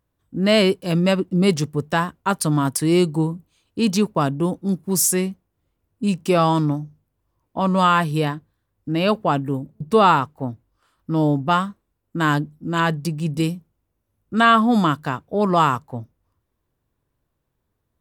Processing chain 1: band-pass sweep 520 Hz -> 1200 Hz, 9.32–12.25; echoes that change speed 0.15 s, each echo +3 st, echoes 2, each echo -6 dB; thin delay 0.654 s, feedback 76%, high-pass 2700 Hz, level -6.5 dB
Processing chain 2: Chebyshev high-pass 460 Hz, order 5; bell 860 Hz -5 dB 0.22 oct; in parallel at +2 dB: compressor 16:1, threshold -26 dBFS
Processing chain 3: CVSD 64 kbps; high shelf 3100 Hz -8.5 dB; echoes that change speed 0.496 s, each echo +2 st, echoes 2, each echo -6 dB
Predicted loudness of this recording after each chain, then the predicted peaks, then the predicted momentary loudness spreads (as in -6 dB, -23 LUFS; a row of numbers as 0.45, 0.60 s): -26.5, -21.0, -21.0 LUFS; -7.5, -2.5, -5.0 dBFS; 20, 16, 10 LU